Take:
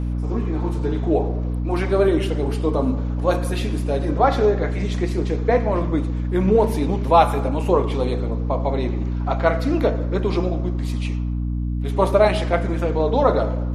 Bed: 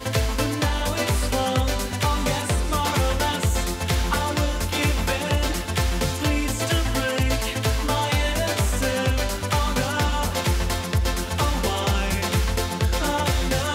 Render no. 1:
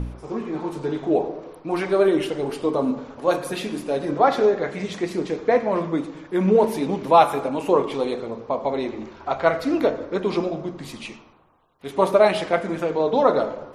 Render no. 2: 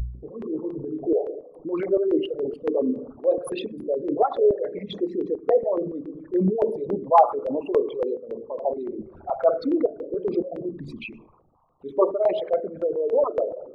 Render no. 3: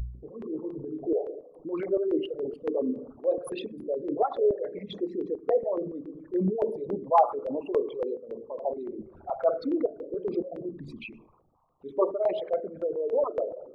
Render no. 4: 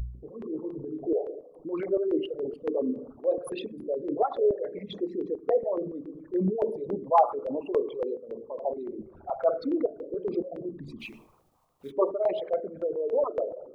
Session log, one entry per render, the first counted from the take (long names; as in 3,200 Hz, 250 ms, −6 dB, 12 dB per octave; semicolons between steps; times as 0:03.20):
hum removal 60 Hz, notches 5
spectral envelope exaggerated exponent 3; notch on a step sequencer 7.1 Hz 260–2,900 Hz
level −5 dB
0:10.99–0:11.90: spectral envelope flattened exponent 0.6